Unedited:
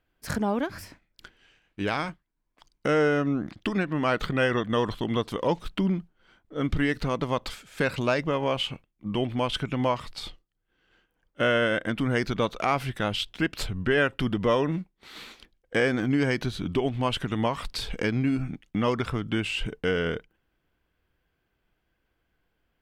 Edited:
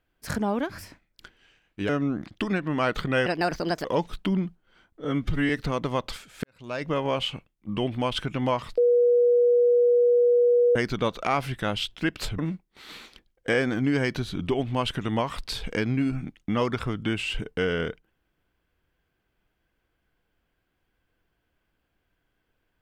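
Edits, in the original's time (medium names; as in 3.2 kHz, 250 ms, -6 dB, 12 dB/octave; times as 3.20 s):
1.89–3.14 s: delete
4.51–5.37 s: speed 147%
6.57–6.87 s: stretch 1.5×
7.81–8.29 s: fade in quadratic
10.15–12.13 s: bleep 483 Hz -16 dBFS
13.76–14.65 s: delete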